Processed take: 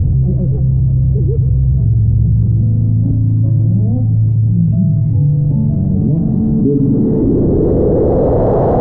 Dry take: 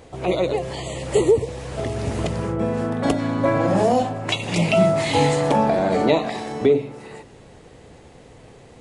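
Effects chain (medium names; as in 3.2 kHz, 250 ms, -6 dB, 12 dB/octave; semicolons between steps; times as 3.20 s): one-bit delta coder 64 kbps, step -15.5 dBFS; bass shelf 490 Hz +7.5 dB; low-pass sweep 120 Hz -> 700 Hz, 5.82–8.60 s; peaking EQ 2.4 kHz +2 dB 0.46 oct, from 6.18 s -11.5 dB; level flattener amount 70%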